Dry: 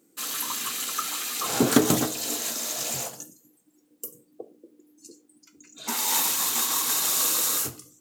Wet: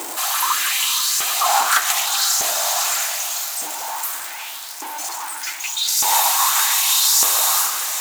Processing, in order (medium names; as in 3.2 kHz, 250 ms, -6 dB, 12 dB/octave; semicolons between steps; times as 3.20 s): jump at every zero crossing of -24.5 dBFS; hum notches 50/100/150/200/250/300 Hz; LFO high-pass saw up 0.83 Hz 390–5900 Hz; resonant low shelf 600 Hz -6.5 dB, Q 3; echo that smears into a reverb 479 ms, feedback 53%, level -10 dB; trim +3 dB